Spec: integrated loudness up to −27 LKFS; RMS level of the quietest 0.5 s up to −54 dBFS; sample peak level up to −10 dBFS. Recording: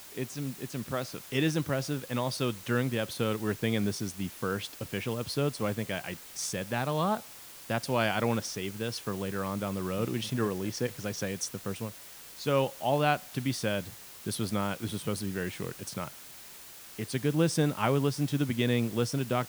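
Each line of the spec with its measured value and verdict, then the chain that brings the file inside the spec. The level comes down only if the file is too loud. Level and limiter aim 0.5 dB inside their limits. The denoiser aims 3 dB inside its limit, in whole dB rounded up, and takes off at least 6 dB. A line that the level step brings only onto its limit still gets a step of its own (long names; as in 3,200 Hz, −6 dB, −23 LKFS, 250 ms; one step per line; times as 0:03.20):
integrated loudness −31.5 LKFS: in spec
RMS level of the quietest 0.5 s −48 dBFS: out of spec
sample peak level −11.0 dBFS: in spec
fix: broadband denoise 9 dB, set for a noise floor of −48 dBFS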